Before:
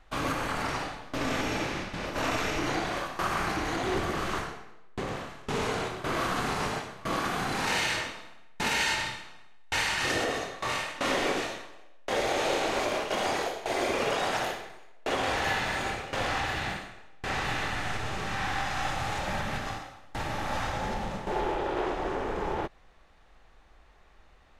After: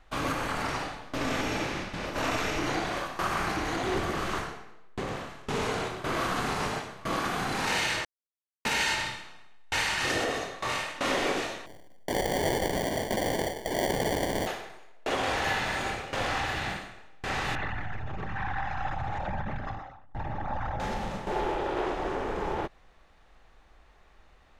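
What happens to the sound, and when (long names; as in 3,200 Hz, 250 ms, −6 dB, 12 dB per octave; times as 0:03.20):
0:08.05–0:08.65: silence
0:11.66–0:14.47: sample-rate reduction 1,300 Hz
0:17.55–0:20.80: spectral envelope exaggerated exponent 2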